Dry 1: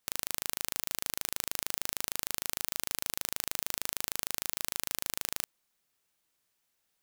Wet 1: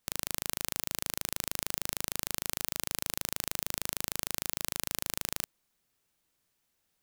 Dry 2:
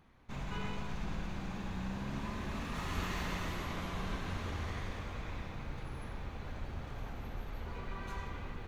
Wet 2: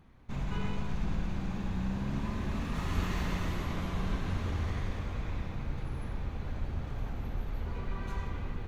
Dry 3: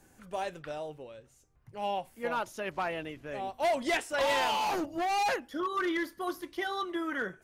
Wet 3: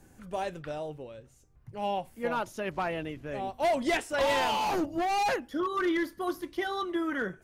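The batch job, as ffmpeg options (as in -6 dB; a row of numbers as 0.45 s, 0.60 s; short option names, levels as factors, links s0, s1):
-af "lowshelf=f=350:g=7.5"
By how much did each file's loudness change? 0.0 LU, +5.0 LU, +1.5 LU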